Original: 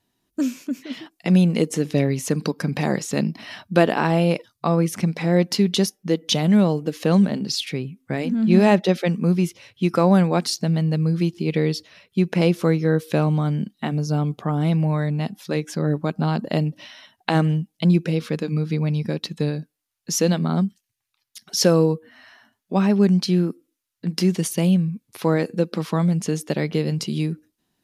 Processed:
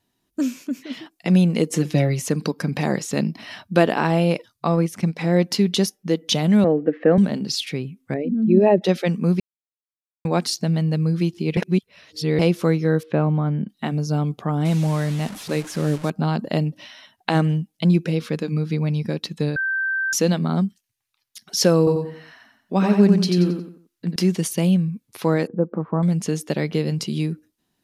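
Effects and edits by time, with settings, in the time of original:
1.71–2.22 comb 5.8 ms, depth 75%
4.72–5.19 transient shaper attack 0 dB, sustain -6 dB
6.64–7.18 speaker cabinet 190–2000 Hz, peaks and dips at 290 Hz +7 dB, 490 Hz +7 dB, 690 Hz +3 dB, 1000 Hz -9 dB, 1800 Hz +8 dB
8.14–8.82 formant sharpening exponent 2
9.4–10.25 mute
11.57–12.39 reverse
13.03–13.69 LPF 1900 Hz
14.65–16.1 delta modulation 64 kbps, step -30.5 dBFS
19.56–20.13 bleep 1560 Hz -20 dBFS
21.78–24.16 feedback echo 90 ms, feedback 35%, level -4.5 dB
25.47–26.03 LPF 1200 Hz 24 dB/oct

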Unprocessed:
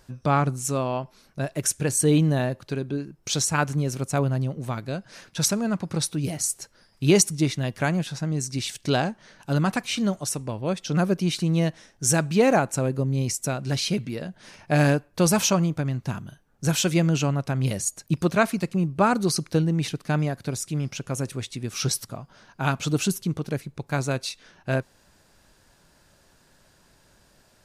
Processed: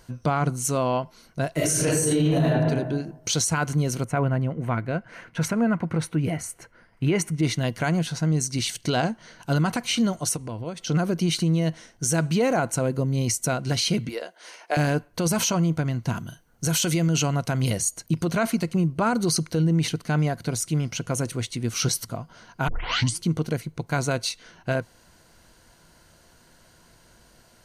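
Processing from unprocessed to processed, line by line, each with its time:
1.53–2.45 reverb throw, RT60 1 s, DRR -9.5 dB
4.04–7.43 resonant high shelf 3100 Hz -12 dB, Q 1.5
10.36–10.87 compressor 3:1, threshold -34 dBFS
14.09–14.77 HPF 410 Hz 24 dB/oct
16.16–17.7 high shelf 3900 Hz +6.5 dB
22.68 tape start 0.57 s
whole clip: ripple EQ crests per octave 1.9, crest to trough 6 dB; limiter -17 dBFS; gain +3 dB

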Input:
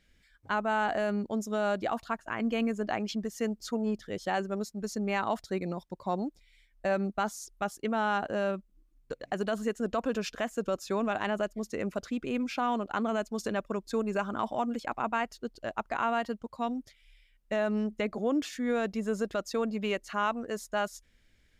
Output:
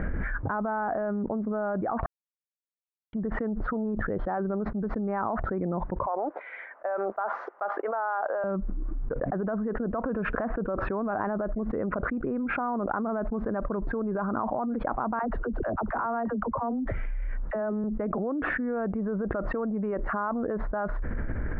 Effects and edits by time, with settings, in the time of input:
2.06–3.13 mute
6.06–8.44 HPF 540 Hz 24 dB/oct
15.19–17.84 dispersion lows, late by 50 ms, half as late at 420 Hz
whole clip: steep low-pass 1500 Hz 36 dB/oct; limiter -28 dBFS; fast leveller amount 100%; gain +2.5 dB

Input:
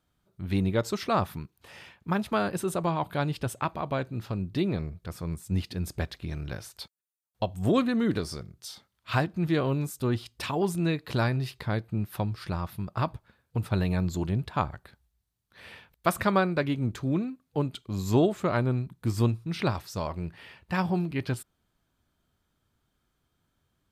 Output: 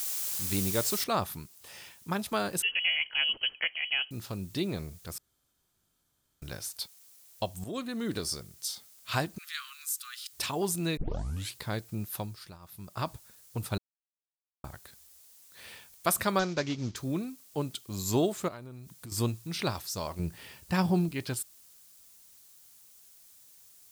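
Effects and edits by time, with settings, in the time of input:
1.04 noise floor step -42 dB -65 dB
2.62–4.11 inverted band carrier 3100 Hz
5.18–6.42 room tone
7.64–8.26 fade in, from -13.5 dB
9.38–10.33 steep high-pass 1200 Hz 72 dB/oct
10.97 tape start 0.60 s
12.09–13.09 dip -17.5 dB, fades 0.50 s
13.78–14.64 mute
16.39–16.96 CVSD 32 kbps
18.48–19.12 compressor, threshold -36 dBFS
20.19–21.09 low shelf 440 Hz +8.5 dB
whole clip: tone controls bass -3 dB, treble +13 dB; gain -3.5 dB

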